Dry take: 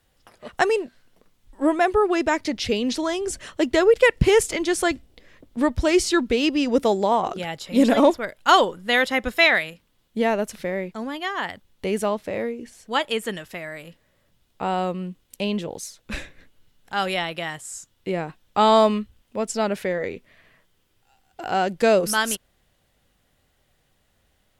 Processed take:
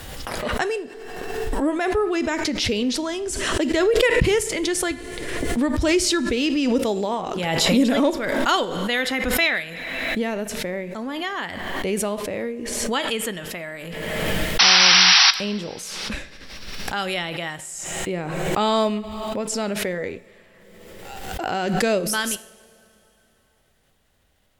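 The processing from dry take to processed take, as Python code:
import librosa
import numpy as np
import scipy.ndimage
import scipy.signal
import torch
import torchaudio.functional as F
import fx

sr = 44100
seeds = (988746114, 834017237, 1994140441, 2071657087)

p1 = fx.spec_paint(x, sr, seeds[0], shape='noise', start_s=14.59, length_s=0.72, low_hz=690.0, high_hz=5900.0, level_db=-11.0)
p2 = fx.rider(p1, sr, range_db=4, speed_s=2.0)
p3 = p1 + (p2 * 10.0 ** (1.0 / 20.0))
p4 = fx.dynamic_eq(p3, sr, hz=830.0, q=0.86, threshold_db=-21.0, ratio=4.0, max_db=-6)
p5 = fx.rev_double_slope(p4, sr, seeds[1], early_s=0.56, late_s=3.3, knee_db=-17, drr_db=13.0)
p6 = fx.pre_swell(p5, sr, db_per_s=28.0)
y = p6 * 10.0 ** (-8.5 / 20.0)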